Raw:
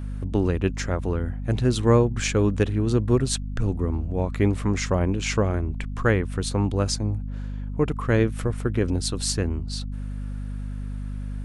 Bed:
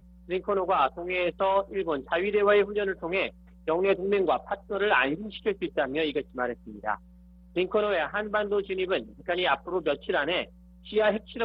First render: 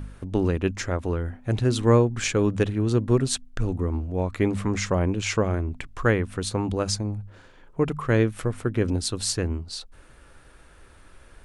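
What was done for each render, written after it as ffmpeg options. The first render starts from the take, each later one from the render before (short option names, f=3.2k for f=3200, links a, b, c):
-af "bandreject=f=50:t=h:w=4,bandreject=f=100:t=h:w=4,bandreject=f=150:t=h:w=4,bandreject=f=200:t=h:w=4,bandreject=f=250:t=h:w=4"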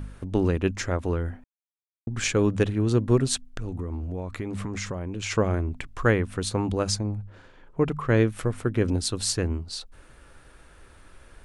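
-filter_complex "[0:a]asplit=3[a][b][c];[a]afade=t=out:st=3.43:d=0.02[d];[b]acompressor=threshold=-27dB:ratio=10:attack=3.2:release=140:knee=1:detection=peak,afade=t=in:st=3.43:d=0.02,afade=t=out:st=5.3:d=0.02[e];[c]afade=t=in:st=5.3:d=0.02[f];[d][e][f]amix=inputs=3:normalize=0,asettb=1/sr,asplit=3[g][h][i];[g]atrim=end=6.994[j];[h]atrim=start=6.99:end=8.17,asetpts=PTS-STARTPTS,afade=t=in:d=0.004:c=qsin,afade=t=out:st=1.176:d=0.004:c=qsin,highshelf=f=6.2k:g=-8[k];[i]atrim=start=8.166[l];[j][k]acrossfade=d=0.004:c1=hsin:c2=qsin[m];[m][l]acrossfade=d=0.004:c1=qsin:c2=hsin,asplit=3[n][o][p];[n]atrim=end=1.44,asetpts=PTS-STARTPTS,afade=t=out:st=1.436:d=0.004:c=hsin[q];[o]atrim=start=1.44:end=2.07,asetpts=PTS-STARTPTS,volume=0[r];[p]atrim=start=2.07,asetpts=PTS-STARTPTS,afade=t=in:d=0.004:c=hsin[s];[q][r][s]concat=n=3:v=0:a=1"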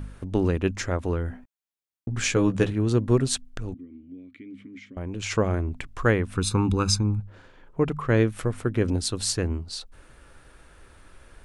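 -filter_complex "[0:a]asettb=1/sr,asplit=3[a][b][c];[a]atrim=end=1.294[d];[b]atrim=start=1.29:end=2.71,asetpts=PTS-STARTPTS,afade=t=in:d=0.004:c=qsin,afade=t=out:st=1.416:d=0.004:c=qsin,asplit=2[e][f];[f]adelay=16,volume=-6dB[g];[e][g]amix=inputs=2:normalize=0,atrim=end_sample=62622[h];[c]atrim=start=2.706[i];[d][h]acrossfade=d=0.004:c1=hsin:c2=qsin[j];[j][i]acrossfade=d=0.004:c1=qsin:c2=hsin,asettb=1/sr,asplit=3[k][l][m];[k]atrim=end=3.744[n];[l]atrim=start=3.74:end=4.97,asetpts=PTS-STARTPTS,afade=t=in:d=0.004:c=qsin,afade=t=out:st=1.226:d=0.004:c=qsin,asplit=3[o][p][q];[o]bandpass=f=270:t=q:w=8,volume=0dB[r];[p]bandpass=f=2.29k:t=q:w=8,volume=-6dB[s];[q]bandpass=f=3.01k:t=q:w=8,volume=-9dB[t];[r][s][t]amix=inputs=3:normalize=0[u];[m]atrim=start=4.966[v];[n][u]acrossfade=d=0.004:c1=hsin:c2=qsin[w];[w][v]acrossfade=d=0.004:c1=qsin:c2=hsin,asettb=1/sr,asplit=3[x][y][z];[x]atrim=end=6.354[aa];[y]atrim=start=6.35:end=7.2,asetpts=PTS-STARTPTS,afade=t=in:d=0.004:c=qsin,afade=t=out:st=0.846:d=0.004:c=qsin,aecho=1:1:0.8:0.93,atrim=end_sample=37485[ab];[z]atrim=start=7.196[ac];[aa][ab]acrossfade=d=0.004:c1=hsin:c2=qsin[ad];[ad][ac]acrossfade=d=0.004:c1=qsin:c2=hsin"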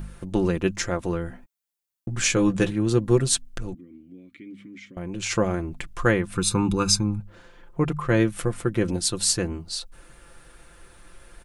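-af "highshelf=f=6.1k:g=7.5,aecho=1:1:5.8:0.55"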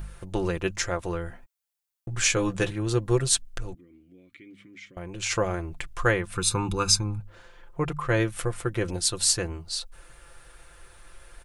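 -af "equalizer=f=230:t=o:w=0.96:g=-12.5"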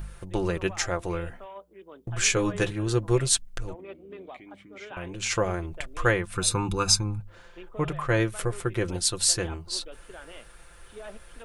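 -filter_complex "[1:a]volume=-19dB[a];[0:a][a]amix=inputs=2:normalize=0"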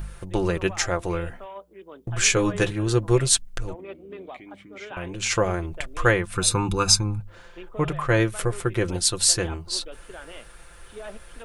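-af "volume=3.5dB"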